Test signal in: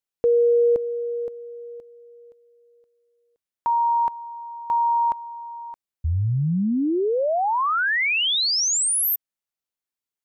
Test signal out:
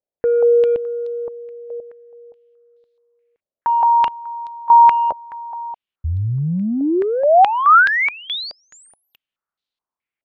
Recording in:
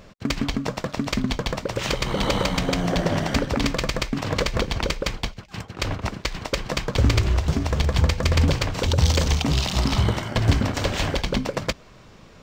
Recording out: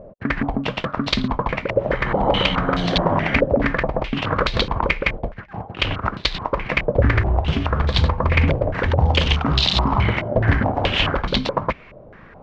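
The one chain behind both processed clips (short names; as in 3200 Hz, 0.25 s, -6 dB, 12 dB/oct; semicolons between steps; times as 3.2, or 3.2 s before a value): in parallel at -11 dB: soft clip -18.5 dBFS; on the sum: stepped low-pass 4.7 Hz 600–3900 Hz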